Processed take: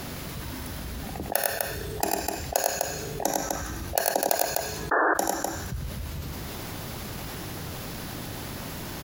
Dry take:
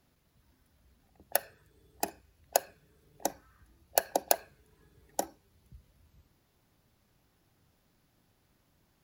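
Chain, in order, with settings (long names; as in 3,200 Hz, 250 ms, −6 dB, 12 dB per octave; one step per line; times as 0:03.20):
low-shelf EQ 74 Hz −5.5 dB
multi-tap delay 82/102/252 ms −16.5/−5/−11.5 dB
sound drawn into the spectrogram noise, 0:04.91–0:05.14, 290–1,800 Hz −23 dBFS
on a send at −20.5 dB: tilt shelving filter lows −8.5 dB, about 1,500 Hz + convolution reverb RT60 1.1 s, pre-delay 3 ms
on the sum: envelope flattener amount 70%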